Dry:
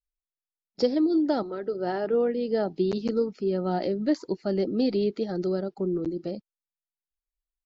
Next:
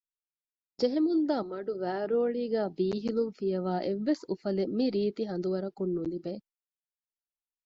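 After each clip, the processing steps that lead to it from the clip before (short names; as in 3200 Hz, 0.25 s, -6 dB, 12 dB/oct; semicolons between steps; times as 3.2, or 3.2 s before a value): gate with hold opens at -42 dBFS; gain -3.5 dB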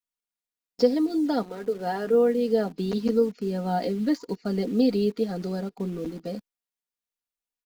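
comb 4.2 ms, depth 74%; in parallel at -9 dB: bit-crush 7-bit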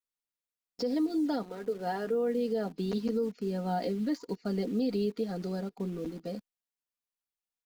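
limiter -18 dBFS, peak gain reduction 10 dB; gain -4.5 dB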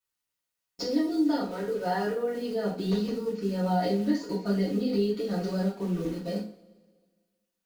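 compressor, threshold -30 dBFS, peak gain reduction 5.5 dB; two-slope reverb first 0.36 s, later 1.6 s, from -21 dB, DRR -7.5 dB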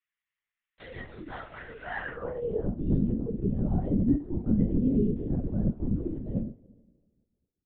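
band-pass sweep 2000 Hz -> 230 Hz, 2.05–2.68; LPC vocoder at 8 kHz whisper; gain +5 dB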